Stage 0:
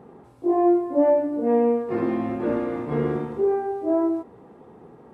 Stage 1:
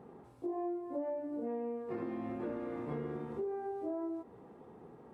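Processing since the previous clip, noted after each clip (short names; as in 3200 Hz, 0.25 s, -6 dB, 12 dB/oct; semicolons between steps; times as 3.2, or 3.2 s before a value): compressor 6:1, threshold -29 dBFS, peak gain reduction 14 dB; gain -7 dB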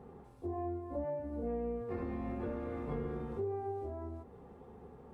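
octaver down 2 oct, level -3 dB; notch comb 320 Hz; gain +1 dB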